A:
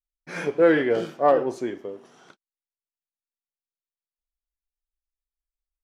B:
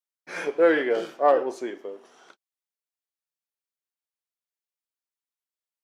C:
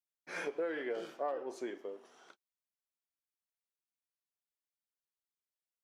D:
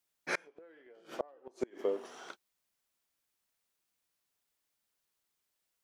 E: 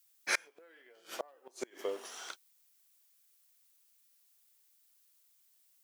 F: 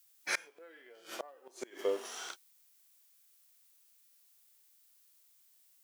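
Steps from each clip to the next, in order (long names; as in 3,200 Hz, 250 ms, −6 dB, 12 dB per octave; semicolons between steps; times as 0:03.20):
high-pass filter 360 Hz 12 dB per octave
downward compressor 6 to 1, threshold −27 dBFS, peak gain reduction 13 dB; level −7 dB
gate with flip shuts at −31 dBFS, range −32 dB; level +11.5 dB
spectral tilt +4 dB per octave
harmonic and percussive parts rebalanced percussive −9 dB; level +6 dB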